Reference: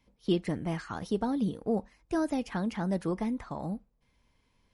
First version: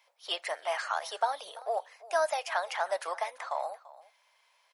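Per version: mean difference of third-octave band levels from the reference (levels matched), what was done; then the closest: 13.5 dB: elliptic high-pass 620 Hz, stop band 60 dB; on a send: echo 0.339 s -19 dB; on the sum: gain +8.5 dB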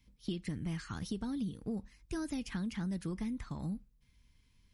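4.5 dB: passive tone stack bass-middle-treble 6-0-2; compressor, threshold -51 dBFS, peak gain reduction 9.5 dB; gain +17 dB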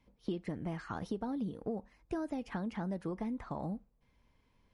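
2.5 dB: high shelf 3500 Hz -9 dB; compressor 6:1, threshold -34 dBFS, peak gain reduction 12 dB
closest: third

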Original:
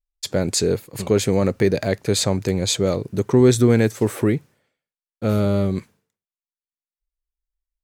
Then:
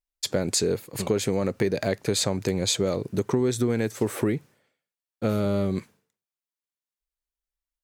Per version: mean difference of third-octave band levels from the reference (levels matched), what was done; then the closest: 3.0 dB: low shelf 74 Hz -11 dB; compressor, threshold -20 dBFS, peak gain reduction 10 dB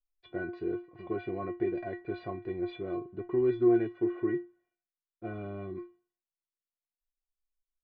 10.0 dB: Gaussian blur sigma 4.1 samples; metallic resonator 350 Hz, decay 0.28 s, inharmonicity 0.008; gain +5.5 dB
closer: first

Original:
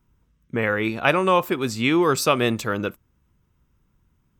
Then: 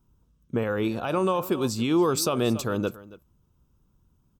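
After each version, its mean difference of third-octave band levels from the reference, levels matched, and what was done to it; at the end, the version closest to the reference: 4.0 dB: on a send: echo 0.277 s -19.5 dB; on the sum: limiter -13.5 dBFS, peak gain reduction 11.5 dB; bell 2000 Hz -14.5 dB 0.74 oct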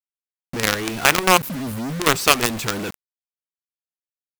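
10.0 dB: spectral delete 1.37–2, 290–8800 Hz; bell 580 Hz -6 dB 0.42 oct; companded quantiser 2-bit; gain -1 dB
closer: first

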